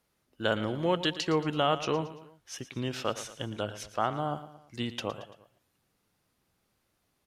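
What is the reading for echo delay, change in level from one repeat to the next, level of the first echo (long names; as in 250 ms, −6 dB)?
113 ms, −6.5 dB, −14.0 dB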